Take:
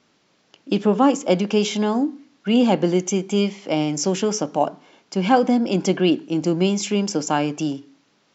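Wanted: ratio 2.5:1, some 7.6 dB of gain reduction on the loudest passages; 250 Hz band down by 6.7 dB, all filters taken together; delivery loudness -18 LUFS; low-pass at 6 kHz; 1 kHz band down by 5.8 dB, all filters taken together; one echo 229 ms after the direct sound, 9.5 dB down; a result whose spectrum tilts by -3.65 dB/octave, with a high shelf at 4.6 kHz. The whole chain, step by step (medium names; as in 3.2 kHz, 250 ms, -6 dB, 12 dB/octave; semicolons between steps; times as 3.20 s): low-pass 6 kHz; peaking EQ 250 Hz -8.5 dB; peaking EQ 1 kHz -8 dB; treble shelf 4.6 kHz +7.5 dB; compression 2.5:1, threshold -28 dBFS; delay 229 ms -9.5 dB; trim +12 dB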